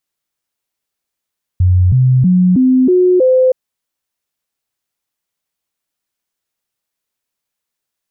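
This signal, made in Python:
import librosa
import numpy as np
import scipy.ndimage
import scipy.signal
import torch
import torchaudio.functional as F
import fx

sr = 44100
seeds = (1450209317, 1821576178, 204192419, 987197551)

y = fx.stepped_sweep(sr, from_hz=90.9, direction='up', per_octave=2, tones=6, dwell_s=0.32, gap_s=0.0, level_db=-6.5)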